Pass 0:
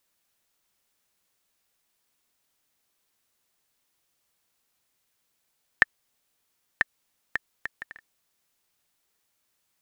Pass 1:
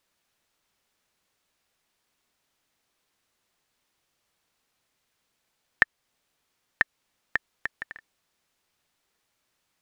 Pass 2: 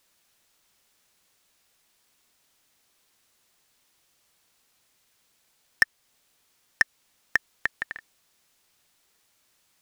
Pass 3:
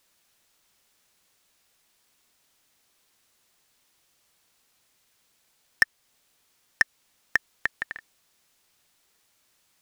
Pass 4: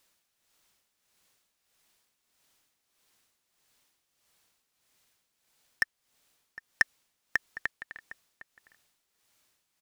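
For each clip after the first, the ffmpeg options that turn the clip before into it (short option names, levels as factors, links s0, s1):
-filter_complex "[0:a]highshelf=f=7800:g=-11.5,asplit=2[s0][s1];[s1]alimiter=limit=0.335:level=0:latency=1:release=328,volume=1.12[s2];[s0][s2]amix=inputs=2:normalize=0,volume=0.708"
-af "highshelf=f=4000:g=7.5,volume=4.22,asoftclip=hard,volume=0.237,volume=1.58"
-af anull
-filter_complex "[0:a]tremolo=f=1.6:d=0.66,asplit=2[s0][s1];[s1]adelay=758,volume=0.178,highshelf=f=4000:g=-17.1[s2];[s0][s2]amix=inputs=2:normalize=0,volume=0.794"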